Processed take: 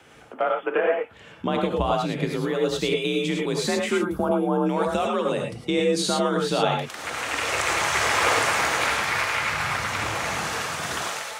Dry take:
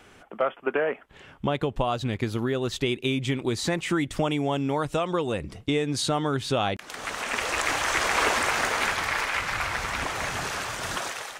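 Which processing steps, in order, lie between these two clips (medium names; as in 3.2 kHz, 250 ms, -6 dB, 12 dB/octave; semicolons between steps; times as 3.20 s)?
time-frequency box 3.94–4.66 s, 1.6–10 kHz -18 dB; frequency shift +43 Hz; gated-style reverb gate 130 ms rising, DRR 0.5 dB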